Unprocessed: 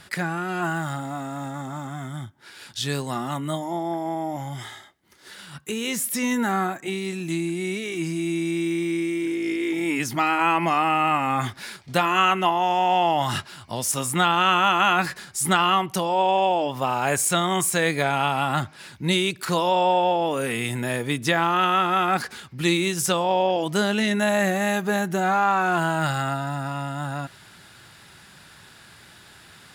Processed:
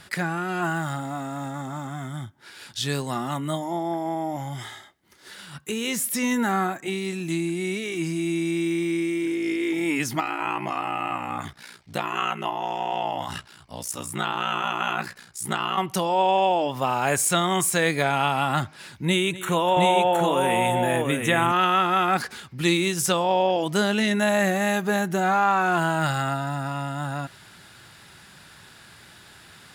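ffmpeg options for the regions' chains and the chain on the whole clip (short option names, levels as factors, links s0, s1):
-filter_complex "[0:a]asettb=1/sr,asplit=3[s0][s1][s2];[s0]atrim=end=10.204[s3];[s1]atrim=start=10.2:end=15.78,asetpts=PTS-STARTPTS,afade=t=in:d=0.004:c=qsin,afade=t=out:st=5.576:d=0.004:c=qsin,flanger=delay=1.3:depth=4.1:regen=-76:speed=1.4:shape=sinusoidal,aeval=exprs='val(0)*sin(2*PI*30*n/s)':c=same[s4];[s2]atrim=start=15.776[s5];[s3][s4]acrossfade=d=0.004:c1=hsin:c2=qsin[s6];[s6][s5]acrossfade=d=0.004:c1=qsin:c2=hsin,asettb=1/sr,asplit=3[s7][s8][s9];[s7]atrim=end=19.054[s10];[s8]atrim=start=19.05:end=21.52,asetpts=PTS-STARTPTS,afade=t=in:d=0.004:c=qsin,afade=t=out:st=2.466:d=0.004:c=qsin,asuperstop=centerf=4800:order=4:qfactor=1.9,aecho=1:1:248|716:0.15|0.668,atrim=end_sample=108927[s11];[s9]atrim=start=21.516[s12];[s10][s11]acrossfade=d=0.004:c1=hsin:c2=qsin[s13];[s13][s12]acrossfade=d=0.004:c1=qsin:c2=hsin"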